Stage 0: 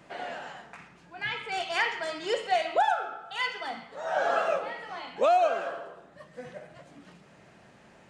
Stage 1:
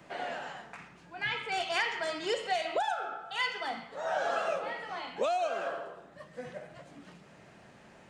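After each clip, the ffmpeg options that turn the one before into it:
-filter_complex "[0:a]acrossover=split=170|3000[a][b][c];[b]acompressor=threshold=-28dB:ratio=6[d];[a][d][c]amix=inputs=3:normalize=0"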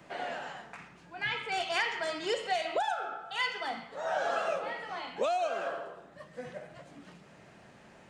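-af anull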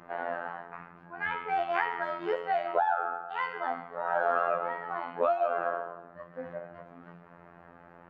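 -af "lowpass=f=1.3k:t=q:w=1.8,bandreject=f=50:t=h:w=6,bandreject=f=100:t=h:w=6,bandreject=f=150:t=h:w=6,afftfilt=real='hypot(re,im)*cos(PI*b)':imag='0':win_size=2048:overlap=0.75,volume=4.5dB"

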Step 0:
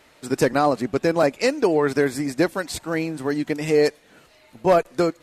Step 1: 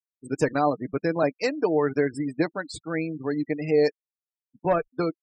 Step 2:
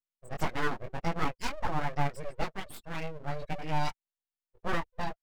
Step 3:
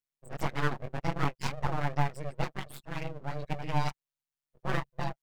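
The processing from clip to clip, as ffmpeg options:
-af "afftfilt=real='re*gte(hypot(re,im),0.0447)':imag='im*gte(hypot(re,im),0.0447)':win_size=1024:overlap=0.75,aecho=1:1:6.6:0.41,volume=-5.5dB"
-af "flanger=delay=17:depth=4:speed=1.7,aeval=exprs='abs(val(0))':c=same,volume=-2dB"
-af "tremolo=f=140:d=0.857,volume=3dB"

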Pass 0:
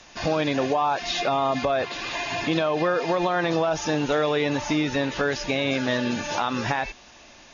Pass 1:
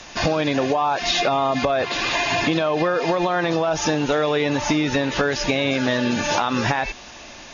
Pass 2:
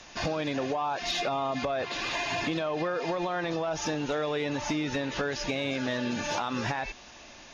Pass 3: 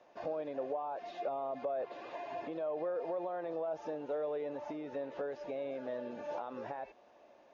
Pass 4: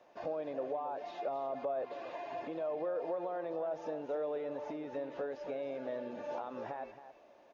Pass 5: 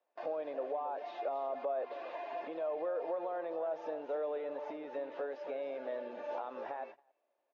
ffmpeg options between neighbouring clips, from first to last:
-af "acompressor=threshold=-26dB:ratio=6,volume=9dB"
-af "asoftclip=type=tanh:threshold=-9.5dB,volume=-9dB"
-af "bandpass=f=550:t=q:w=2.1:csg=0,volume=-3.5dB"
-af "aecho=1:1:272:0.251"
-af "agate=range=-21dB:threshold=-49dB:ratio=16:detection=peak,highpass=370,lowpass=4.1k,volume=1dB"

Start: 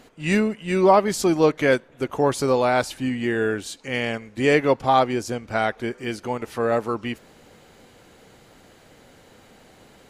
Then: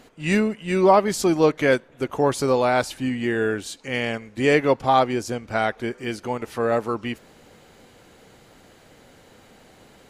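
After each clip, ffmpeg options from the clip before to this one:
-af anull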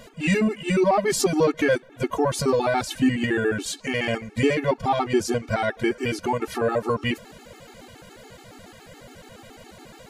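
-filter_complex "[0:a]asplit=2[a][b];[b]acontrast=89,volume=-2dB[c];[a][c]amix=inputs=2:normalize=0,alimiter=limit=-9.5dB:level=0:latency=1:release=231,afftfilt=real='re*gt(sin(2*PI*7.1*pts/sr)*(1-2*mod(floor(b*sr/1024/230),2)),0)':imag='im*gt(sin(2*PI*7.1*pts/sr)*(1-2*mod(floor(b*sr/1024/230),2)),0)':win_size=1024:overlap=0.75"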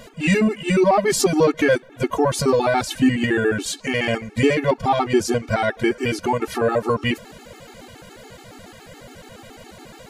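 -af "asoftclip=type=hard:threshold=-10.5dB,volume=3.5dB"

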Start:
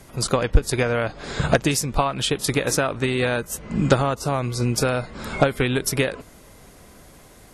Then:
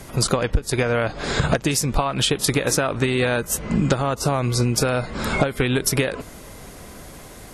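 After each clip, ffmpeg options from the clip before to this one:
-af "acompressor=threshold=-24dB:ratio=6,volume=7.5dB"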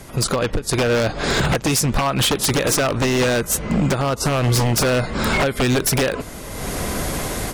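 -af "dynaudnorm=f=250:g=3:m=16dB,aeval=exprs='0.251*(abs(mod(val(0)/0.251+3,4)-2)-1)':c=same"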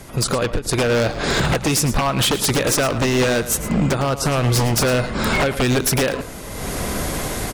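-af "aecho=1:1:110:0.224"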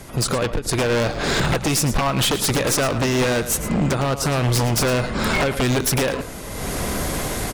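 -af "aeval=exprs='clip(val(0),-1,0.112)':c=same"

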